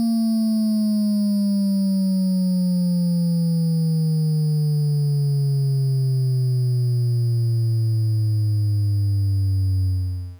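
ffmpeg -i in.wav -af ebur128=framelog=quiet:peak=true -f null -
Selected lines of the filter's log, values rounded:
Integrated loudness:
  I:         -20.7 LUFS
  Threshold: -30.7 LUFS
Loudness range:
  LRA:         0.7 LU
  Threshold: -40.6 LUFS
  LRA low:   -21.0 LUFS
  LRA high:  -20.3 LUFS
True peak:
  Peak:      -17.1 dBFS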